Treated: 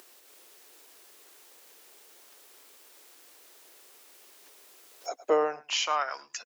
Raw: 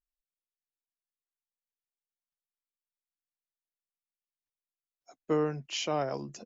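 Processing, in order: on a send: echo 0.106 s -19.5 dB; on the sum: upward compressor, threshold -31 dBFS; bell 100 Hz -5.5 dB 1.3 oct; high-pass sweep 380 Hz -> 1700 Hz, 4.9–6.31; gain +4.5 dB

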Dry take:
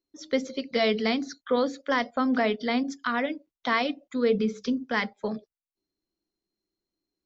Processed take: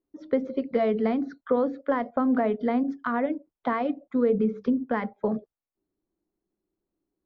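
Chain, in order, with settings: compressor 2.5:1, threshold -26 dBFS, peak gain reduction 5.5 dB; LPF 1100 Hz 12 dB/oct; gain +5.5 dB

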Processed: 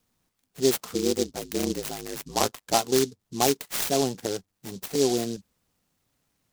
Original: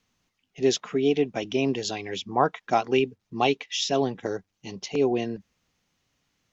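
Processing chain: 0.93–2.74 ring modulator 53 Hz; noise-modulated delay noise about 5100 Hz, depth 0.12 ms

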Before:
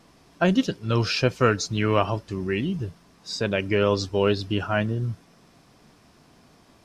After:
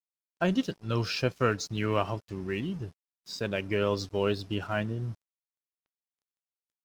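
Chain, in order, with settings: crossover distortion -45 dBFS; gain -6 dB

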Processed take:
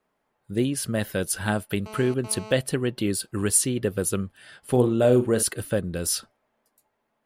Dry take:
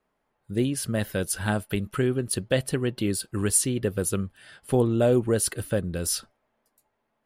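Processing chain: low shelf 66 Hz -9 dB; 1.86–2.52 GSM buzz -42 dBFS; 4.71–5.43 flutter echo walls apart 6.9 m, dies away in 0.25 s; gain +1.5 dB

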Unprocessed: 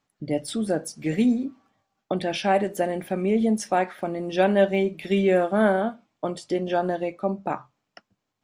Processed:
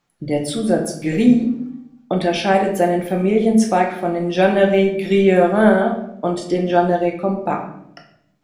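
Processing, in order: shoebox room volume 170 m³, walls mixed, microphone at 0.8 m; gain +4.5 dB

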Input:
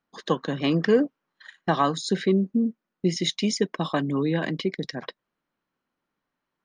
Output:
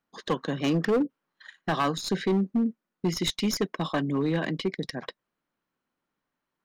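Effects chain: tracing distortion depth 0.035 ms; spectral gain 0.9–1.1, 550–8300 Hz -21 dB; hard clip -18 dBFS, distortion -13 dB; gain -1.5 dB

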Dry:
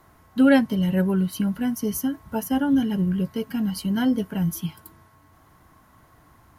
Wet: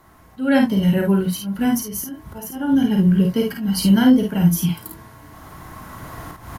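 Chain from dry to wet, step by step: recorder AGC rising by 7.2 dB/s; auto swell 0.252 s; early reflections 35 ms -10 dB, 51 ms -4 dB, 74 ms -13 dB; gain +2.5 dB

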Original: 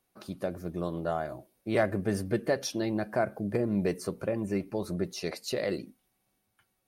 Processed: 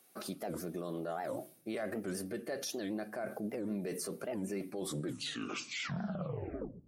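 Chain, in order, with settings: tape stop at the end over 2.28 s; HPF 230 Hz 12 dB/oct; bell 11000 Hz +6.5 dB 1.5 oct; notch 940 Hz, Q 6.4; reverse; compressor 6:1, threshold -38 dBFS, peak gain reduction 16 dB; reverse; limiter -38.5 dBFS, peak gain reduction 10.5 dB; on a send at -18 dB: reverb RT60 0.55 s, pre-delay 4 ms; on the sum: record warp 78 rpm, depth 250 cents; gain +8.5 dB

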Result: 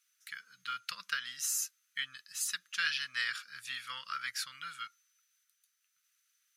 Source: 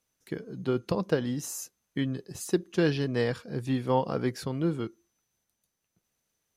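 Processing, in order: elliptic high-pass 1300 Hz, stop band 40 dB; gain +5 dB

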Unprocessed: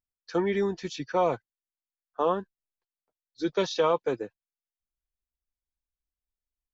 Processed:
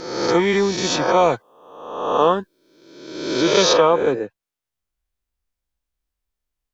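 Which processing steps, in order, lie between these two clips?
spectral swells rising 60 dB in 1.06 s; high shelf 3400 Hz +10 dB, from 3.73 s -4 dB; gain +7.5 dB

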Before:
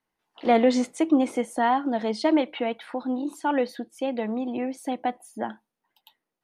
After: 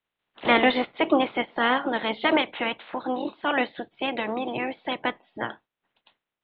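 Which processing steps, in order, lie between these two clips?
spectral limiter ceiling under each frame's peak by 20 dB; steep low-pass 3800 Hz 72 dB/oct

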